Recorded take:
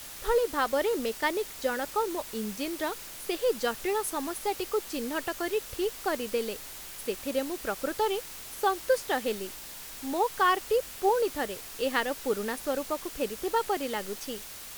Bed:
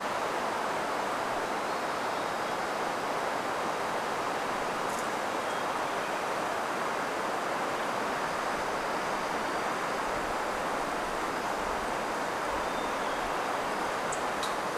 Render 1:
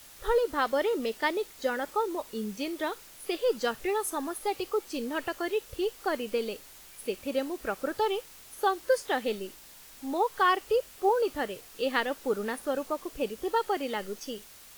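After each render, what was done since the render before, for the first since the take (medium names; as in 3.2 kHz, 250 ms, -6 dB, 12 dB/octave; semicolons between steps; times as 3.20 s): noise print and reduce 8 dB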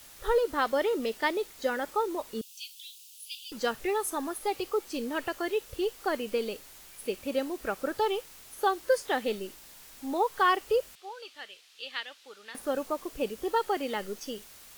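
2.41–3.52 s: steep high-pass 2.7 kHz 72 dB/octave; 10.95–12.55 s: band-pass filter 3.5 kHz, Q 1.5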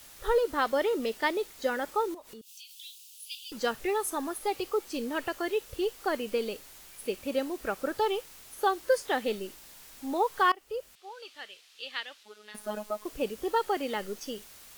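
2.14–2.71 s: compression, threshold -44 dBFS; 10.52–11.33 s: fade in, from -22.5 dB; 12.23–13.05 s: robot voice 211 Hz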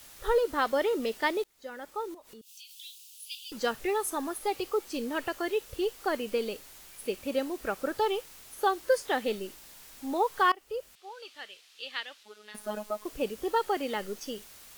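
1.44–2.74 s: fade in, from -23.5 dB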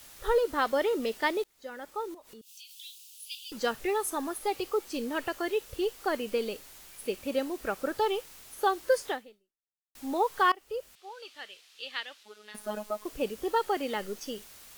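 9.09–9.95 s: fade out exponential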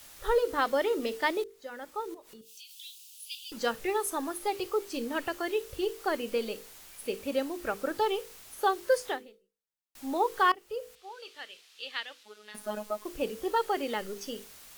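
hum notches 50/100/150/200/250/300/350/400/450/500 Hz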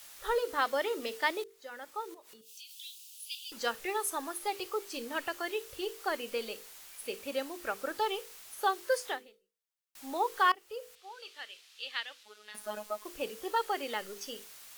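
bass shelf 420 Hz -12 dB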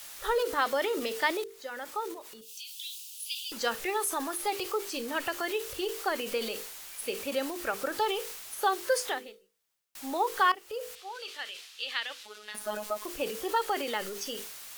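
in parallel at 0 dB: compression, threshold -41 dBFS, peak gain reduction 18 dB; on the sum: transient shaper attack +1 dB, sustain +6 dB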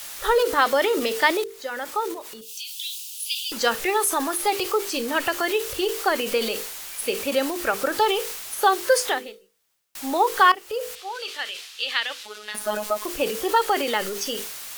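trim +8.5 dB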